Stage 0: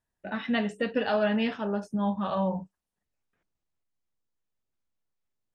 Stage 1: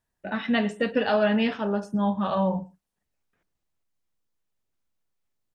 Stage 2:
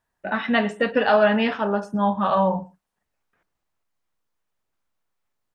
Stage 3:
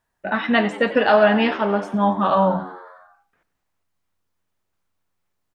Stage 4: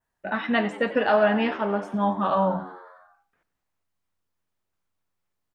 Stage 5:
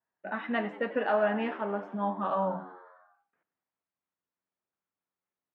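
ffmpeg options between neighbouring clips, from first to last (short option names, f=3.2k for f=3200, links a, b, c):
-af "aecho=1:1:116:0.075,volume=3.5dB"
-af "equalizer=f=1.1k:t=o:w=2.3:g=8"
-filter_complex "[0:a]asplit=8[a][b][c][d][e][f][g][h];[b]adelay=91,afreqshift=89,volume=-17dB[i];[c]adelay=182,afreqshift=178,volume=-20.7dB[j];[d]adelay=273,afreqshift=267,volume=-24.5dB[k];[e]adelay=364,afreqshift=356,volume=-28.2dB[l];[f]adelay=455,afreqshift=445,volume=-32dB[m];[g]adelay=546,afreqshift=534,volume=-35.7dB[n];[h]adelay=637,afreqshift=623,volume=-39.5dB[o];[a][i][j][k][l][m][n][o]amix=inputs=8:normalize=0,volume=2.5dB"
-af "adynamicequalizer=threshold=0.00891:dfrequency=4200:dqfactor=1.2:tfrequency=4200:tqfactor=1.2:attack=5:release=100:ratio=0.375:range=2.5:mode=cutabove:tftype=bell,volume=-5dB"
-af "highpass=180,lowpass=2.5k,volume=-6.5dB"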